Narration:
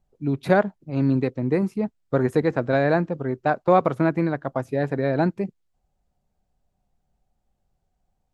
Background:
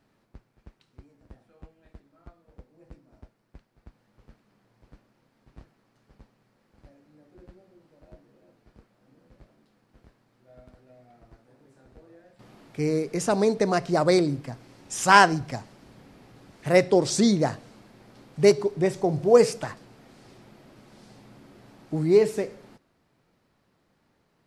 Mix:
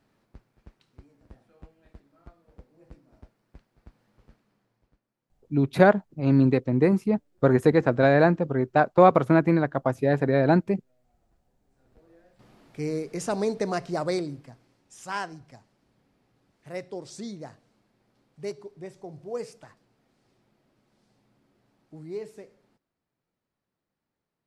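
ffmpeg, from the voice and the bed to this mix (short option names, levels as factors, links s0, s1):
-filter_complex "[0:a]adelay=5300,volume=1.19[s0];[1:a]volume=4.73,afade=t=out:st=4.09:d=0.91:silence=0.125893,afade=t=in:st=11.67:d=0.47:silence=0.188365,afade=t=out:st=13.73:d=1.1:silence=0.237137[s1];[s0][s1]amix=inputs=2:normalize=0"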